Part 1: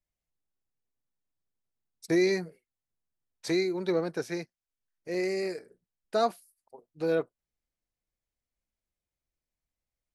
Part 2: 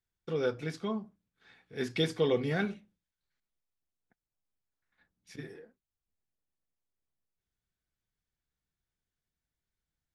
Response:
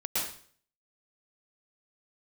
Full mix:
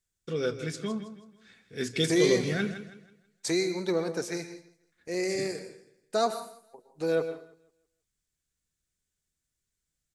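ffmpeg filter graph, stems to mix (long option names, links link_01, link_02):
-filter_complex "[0:a]agate=range=-9dB:threshold=-52dB:ratio=16:detection=peak,volume=-1.5dB,asplit=3[link_01][link_02][link_03];[link_02]volume=-15.5dB[link_04];[link_03]volume=-19dB[link_05];[1:a]equalizer=frequency=840:width_type=o:width=0.63:gain=-9.5,volume=2dB,asplit=2[link_06][link_07];[link_07]volume=-11.5dB[link_08];[2:a]atrim=start_sample=2205[link_09];[link_04][link_09]afir=irnorm=-1:irlink=0[link_10];[link_05][link_08]amix=inputs=2:normalize=0,aecho=0:1:162|324|486|648|810:1|0.34|0.116|0.0393|0.0134[link_11];[link_01][link_06][link_10][link_11]amix=inputs=4:normalize=0,equalizer=frequency=7600:width_type=o:width=0.94:gain=11.5"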